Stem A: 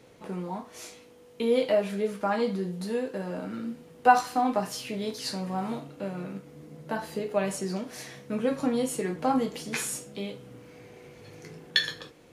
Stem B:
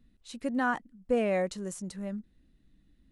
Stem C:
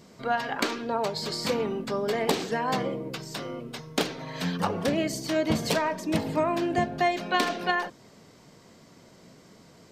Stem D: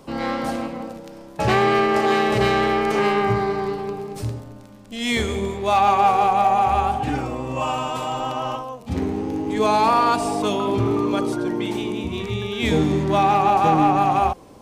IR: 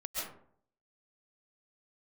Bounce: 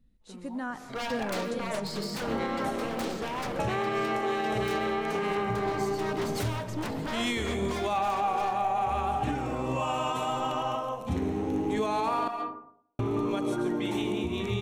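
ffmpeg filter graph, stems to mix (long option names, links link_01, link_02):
-filter_complex "[0:a]volume=-13.5dB[link_01];[1:a]bass=frequency=250:gain=7,treble=frequency=4000:gain=3,volume=-9.5dB,asplit=3[link_02][link_03][link_04];[link_03]volume=-11dB[link_05];[2:a]aeval=exprs='0.0473*(abs(mod(val(0)/0.0473+3,4)-2)-1)':channel_layout=same,adynamicequalizer=threshold=0.00562:dfrequency=2100:dqfactor=0.7:tfrequency=2100:tqfactor=0.7:attack=5:release=100:ratio=0.375:range=2:mode=cutabove:tftype=highshelf,adelay=700,volume=-2.5dB,asplit=2[link_06][link_07];[link_07]volume=-15dB[link_08];[3:a]bandreject=frequency=4800:width=5.2,adelay=2200,volume=-4dB,asplit=3[link_09][link_10][link_11];[link_09]atrim=end=12.28,asetpts=PTS-STARTPTS,afade=type=out:start_time=12.276:duration=0.004:curve=hsin[link_12];[link_10]atrim=start=12.28:end=12.99,asetpts=PTS-STARTPTS,volume=0[link_13];[link_11]atrim=start=12.99,asetpts=PTS-STARTPTS,afade=type=in:duration=0.004:curve=hsin[link_14];[link_12][link_13][link_14]concat=n=3:v=0:a=1,asplit=2[link_15][link_16];[link_16]volume=-8.5dB[link_17];[link_04]apad=whole_len=543456[link_18];[link_01][link_18]sidechaingate=range=-21dB:threshold=-59dB:ratio=16:detection=peak[link_19];[4:a]atrim=start_sample=2205[link_20];[link_05][link_08][link_17]amix=inputs=3:normalize=0[link_21];[link_21][link_20]afir=irnorm=-1:irlink=0[link_22];[link_19][link_02][link_06][link_15][link_22]amix=inputs=5:normalize=0,alimiter=limit=-20dB:level=0:latency=1:release=359"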